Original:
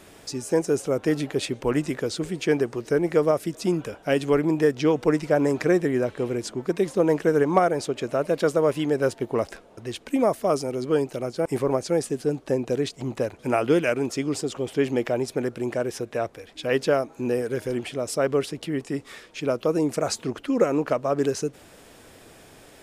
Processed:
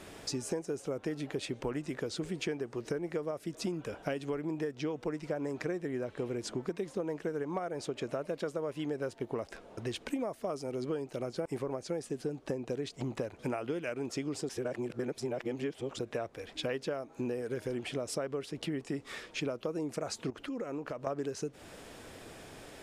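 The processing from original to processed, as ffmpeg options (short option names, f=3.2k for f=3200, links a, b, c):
-filter_complex "[0:a]asettb=1/sr,asplit=3[a][b][c];[a]atrim=end=20.304[d];[b]atrim=start=20.3:end=21.07,asetpts=PTS-STARTPTS,afade=t=in:d=0.004:c=qsin,afade=t=out:st=0.766:d=0.004:c=qsin,acompressor=threshold=-37dB:ratio=4:attack=3.2:release=140:knee=1:detection=peak[e];[c]atrim=start=21.066[f];[d][e]acrossfade=d=0.004:c1=hsin:c2=qsin[g];[g][f]acrossfade=d=0.004:c1=qsin:c2=hsin,asplit=3[h][i][j];[h]atrim=end=14.492[k];[i]atrim=start=14.488:end=15.992,asetpts=PTS-STARTPTS,areverse[l];[j]atrim=start=15.988[m];[k][l]acrossfade=d=0.004:c1=hsin:c2=hsin[n];[n][m]acrossfade=d=0.004:c1=hsin:c2=hsin,highshelf=f=11k:g=-9,acompressor=threshold=-32dB:ratio=12"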